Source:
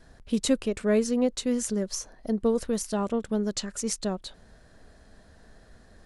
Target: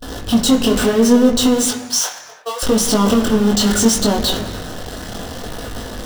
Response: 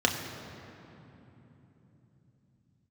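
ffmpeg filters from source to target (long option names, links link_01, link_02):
-filter_complex "[0:a]aeval=exprs='val(0)+0.5*0.0562*sgn(val(0))':channel_layout=same,asettb=1/sr,asplit=3[link_01][link_02][link_03];[link_01]atrim=end=1.694[link_04];[link_02]atrim=start=1.69:end=2.63,asetpts=PTS-STARTPTS,afade=type=in:duration=0.004:curve=qsin,afade=type=out:start_time=0.936:duration=0.004:curve=qsin,highpass=frequency=700:width=0.5412,highpass=frequency=700:width=1.3066[link_05];[link_03]atrim=start=2.626[link_06];[link_04][link_05]acrossfade=duration=0.004:curve1=hsin:curve2=qsin[link_07];[link_07][link_06]acrossfade=duration=0.004:curve1=qsin:curve2=hsin,agate=range=-34dB:threshold=-31dB:ratio=16:detection=peak,acompressor=threshold=-24dB:ratio=6,aeval=exprs='0.211*sin(PI/2*2.51*val(0)/0.211)':channel_layout=same,flanger=delay=18.5:depth=5.7:speed=0.7,asplit=2[link_08][link_09];[1:a]atrim=start_sample=2205,afade=type=out:start_time=0.41:duration=0.01,atrim=end_sample=18522[link_10];[link_09][link_10]afir=irnorm=-1:irlink=0,volume=-10.5dB[link_11];[link_08][link_11]amix=inputs=2:normalize=0"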